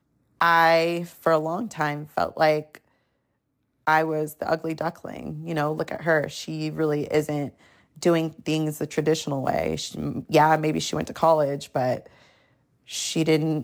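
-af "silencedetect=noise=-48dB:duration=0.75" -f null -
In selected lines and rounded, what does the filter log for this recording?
silence_start: 2.78
silence_end: 3.87 | silence_duration: 1.09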